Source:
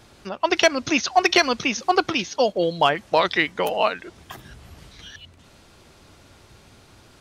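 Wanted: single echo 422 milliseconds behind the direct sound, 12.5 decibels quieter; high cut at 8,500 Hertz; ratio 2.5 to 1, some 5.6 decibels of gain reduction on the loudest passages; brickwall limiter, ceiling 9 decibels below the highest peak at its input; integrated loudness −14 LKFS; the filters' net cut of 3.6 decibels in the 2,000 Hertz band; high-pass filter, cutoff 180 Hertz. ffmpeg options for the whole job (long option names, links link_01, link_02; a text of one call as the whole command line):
ffmpeg -i in.wav -af "highpass=180,lowpass=8500,equalizer=frequency=2000:width_type=o:gain=-4.5,acompressor=threshold=-21dB:ratio=2.5,alimiter=limit=-18dB:level=0:latency=1,aecho=1:1:422:0.237,volume=15.5dB" out.wav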